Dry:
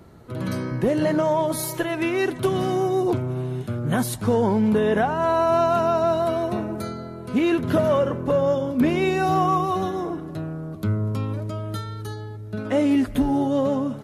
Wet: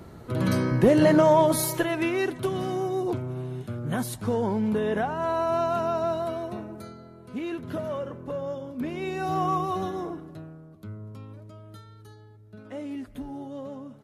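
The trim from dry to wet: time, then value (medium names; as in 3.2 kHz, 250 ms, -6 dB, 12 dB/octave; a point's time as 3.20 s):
1.42 s +3 dB
2.50 s -6 dB
6.06 s -6 dB
6.97 s -12 dB
8.90 s -12 dB
9.48 s -5 dB
10.04 s -5 dB
10.70 s -16 dB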